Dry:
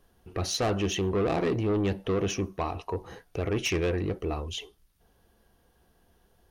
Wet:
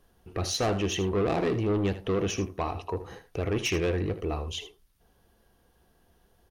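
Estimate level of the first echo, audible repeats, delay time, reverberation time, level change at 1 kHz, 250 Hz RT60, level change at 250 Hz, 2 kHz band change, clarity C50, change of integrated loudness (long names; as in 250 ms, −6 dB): −13.0 dB, 1, 78 ms, no reverb audible, +0.5 dB, no reverb audible, 0.0 dB, 0.0 dB, no reverb audible, 0.0 dB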